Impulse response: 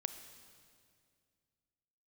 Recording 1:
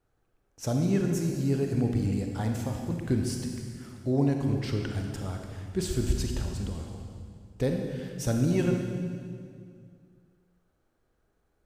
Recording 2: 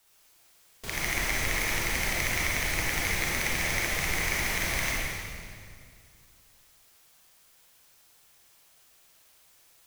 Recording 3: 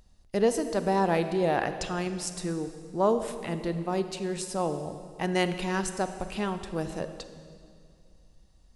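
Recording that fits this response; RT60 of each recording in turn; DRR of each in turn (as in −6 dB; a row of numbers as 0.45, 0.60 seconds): 3; 2.2, 2.2, 2.2 seconds; 2.5, −6.0, 9.0 decibels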